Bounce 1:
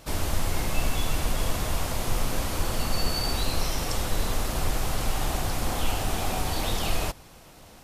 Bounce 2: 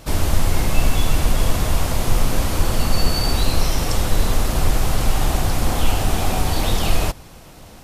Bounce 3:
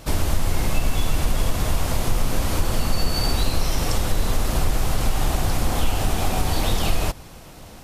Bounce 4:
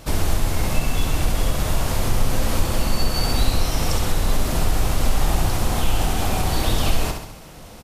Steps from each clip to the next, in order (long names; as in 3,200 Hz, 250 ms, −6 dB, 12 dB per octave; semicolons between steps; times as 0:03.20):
low-shelf EQ 300 Hz +4.5 dB; level +5.5 dB
downward compressor 2 to 1, threshold −17 dBFS, peak gain reduction 6.5 dB
repeating echo 67 ms, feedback 54%, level −6 dB